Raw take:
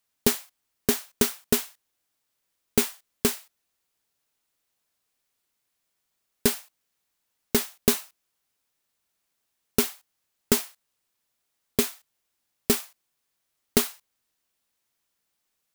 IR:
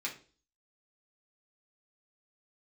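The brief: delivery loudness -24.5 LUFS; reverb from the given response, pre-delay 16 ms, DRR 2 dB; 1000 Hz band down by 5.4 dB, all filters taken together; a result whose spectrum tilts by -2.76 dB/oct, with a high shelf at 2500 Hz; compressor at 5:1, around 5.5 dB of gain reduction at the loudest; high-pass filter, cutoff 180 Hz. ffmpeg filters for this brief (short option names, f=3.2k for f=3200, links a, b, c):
-filter_complex "[0:a]highpass=180,equalizer=f=1k:t=o:g=-6.5,highshelf=f=2.5k:g=-4,acompressor=threshold=-25dB:ratio=5,asplit=2[a][b];[1:a]atrim=start_sample=2205,adelay=16[c];[b][c]afir=irnorm=-1:irlink=0,volume=-4.5dB[d];[a][d]amix=inputs=2:normalize=0,volume=9.5dB"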